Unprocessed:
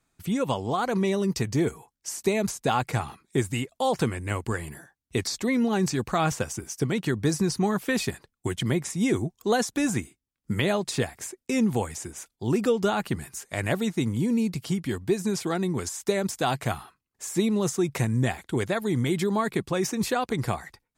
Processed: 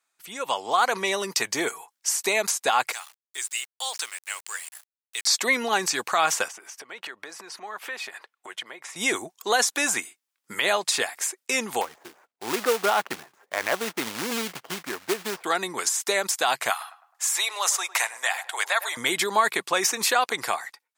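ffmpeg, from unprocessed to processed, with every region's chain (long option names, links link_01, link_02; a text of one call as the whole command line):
ffmpeg -i in.wav -filter_complex "[0:a]asettb=1/sr,asplit=3[link_01][link_02][link_03];[link_01]atrim=end=2.924[link_04];[link_02]atrim=start=2.92:end=5.27,asetpts=PTS-STARTPTS,afade=type=in:duration=0.004:curve=qsin,afade=type=out:start_time=2.346:duration=0.004:curve=qsin,highpass=210,lowpass=8000,aderivative,aeval=exprs='val(0)*gte(abs(val(0)),0.00282)':channel_layout=same[link_05];[link_03]atrim=start=5.266[link_06];[link_04][link_05]acrossfade=duration=0.004:curve1=hsin:curve2=qsin[link_07];[link_07][link_06]acrossfade=duration=0.004:curve1=qsin:curve2=hsin,asettb=1/sr,asplit=3[link_08][link_09][link_10];[link_08]atrim=end=6.484[link_11];[link_09]atrim=start=6.48:end=8.96,asetpts=PTS-STARTPTS,afade=type=in:duration=0.004:curve=qsin,afade=type=out:start_time=2.476:duration=0.004:curve=qsin,acompressor=threshold=-35dB:ratio=12:attack=3.2:release=140:knee=1:detection=peak,bass=frequency=250:gain=-13,treble=frequency=4000:gain=-13[link_12];[link_10]atrim=start=8.956[link_13];[link_11][link_12]acrossfade=duration=0.004:curve1=hsin:curve2=qsin[link_14];[link_14][link_13]acrossfade=duration=0.004:curve1=qsin:curve2=hsin,asettb=1/sr,asplit=3[link_15][link_16][link_17];[link_15]atrim=end=11.814[link_18];[link_16]atrim=start=11.81:end=15.44,asetpts=PTS-STARTPTS,afade=type=in:duration=0.004:curve=qsin,afade=type=out:start_time=3.626:duration=0.004:curve=qsin,highshelf=frequency=2500:gain=-10,adynamicsmooth=sensitivity=3:basefreq=750,acrusher=bits=4:mode=log:mix=0:aa=0.000001[link_19];[link_17]atrim=start=15.436[link_20];[link_18][link_19]acrossfade=duration=0.004:curve1=hsin:curve2=qsin[link_21];[link_21][link_20]acrossfade=duration=0.004:curve1=qsin:curve2=hsin,asettb=1/sr,asplit=3[link_22][link_23][link_24];[link_22]atrim=end=16.704[link_25];[link_23]atrim=start=16.7:end=18.97,asetpts=PTS-STARTPTS,afade=type=in:duration=0.004:curve=qsin,afade=type=out:start_time=2.266:duration=0.004:curve=qsin,highpass=frequency=690:width=0.5412,highpass=frequency=690:width=1.3066,asplit=2[link_26][link_27];[link_27]adelay=105,lowpass=frequency=1500:poles=1,volume=-14dB,asplit=2[link_28][link_29];[link_29]adelay=105,lowpass=frequency=1500:poles=1,volume=0.45,asplit=2[link_30][link_31];[link_31]adelay=105,lowpass=frequency=1500:poles=1,volume=0.45,asplit=2[link_32][link_33];[link_33]adelay=105,lowpass=frequency=1500:poles=1,volume=0.45[link_34];[link_26][link_28][link_30][link_32][link_34]amix=inputs=5:normalize=0,atrim=end_sample=100107[link_35];[link_24]atrim=start=18.966[link_36];[link_25][link_35]acrossfade=duration=0.004:curve1=hsin:curve2=qsin[link_37];[link_37][link_36]acrossfade=duration=0.004:curve1=qsin:curve2=hsin,dynaudnorm=framelen=200:gausssize=5:maxgain=13dB,highpass=850,alimiter=level_in=8.5dB:limit=-1dB:release=50:level=0:latency=1,volume=-9dB" out.wav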